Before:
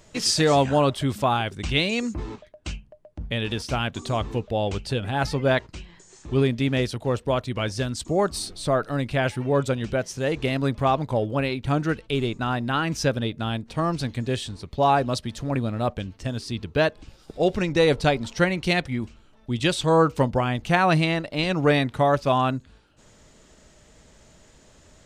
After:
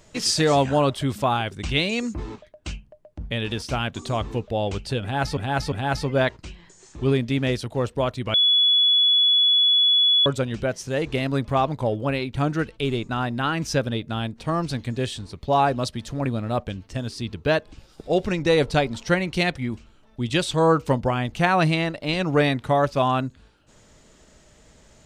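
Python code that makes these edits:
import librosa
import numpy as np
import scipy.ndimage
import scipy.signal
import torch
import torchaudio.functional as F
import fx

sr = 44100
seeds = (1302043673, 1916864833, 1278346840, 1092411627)

y = fx.edit(x, sr, fx.repeat(start_s=5.02, length_s=0.35, count=3),
    fx.bleep(start_s=7.64, length_s=1.92, hz=3400.0, db=-14.5), tone=tone)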